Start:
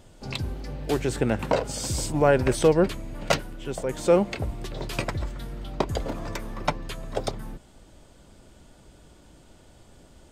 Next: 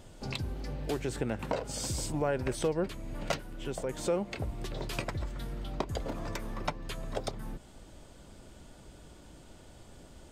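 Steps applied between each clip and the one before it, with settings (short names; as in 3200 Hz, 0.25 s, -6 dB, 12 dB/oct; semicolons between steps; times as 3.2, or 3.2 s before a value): compressor 2:1, threshold -36 dBFS, peak gain reduction 12 dB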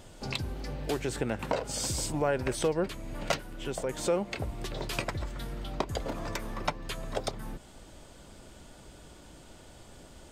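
low shelf 450 Hz -4 dB; gain +4 dB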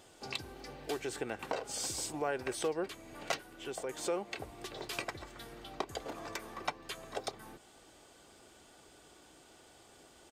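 HPF 360 Hz 6 dB/oct; comb 2.6 ms, depth 32%; gain -4.5 dB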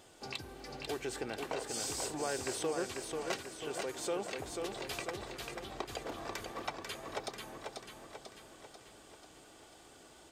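in parallel at +0.5 dB: limiter -29.5 dBFS, peak gain reduction 10.5 dB; on the sum: warbling echo 0.491 s, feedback 55%, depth 59 cents, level -4.5 dB; gain -6.5 dB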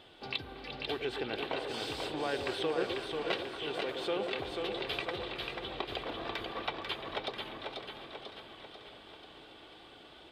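resonant high shelf 4900 Hz -12 dB, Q 3; delay with a stepping band-pass 0.116 s, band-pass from 420 Hz, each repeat 1.4 oct, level -4 dB; warbling echo 0.561 s, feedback 63%, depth 133 cents, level -15.5 dB; gain +1.5 dB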